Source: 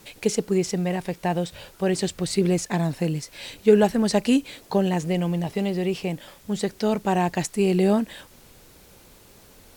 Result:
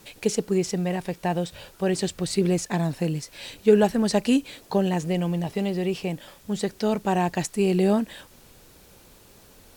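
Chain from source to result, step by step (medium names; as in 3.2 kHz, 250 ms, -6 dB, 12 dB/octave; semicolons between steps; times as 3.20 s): band-stop 2.1 kHz, Q 26; trim -1 dB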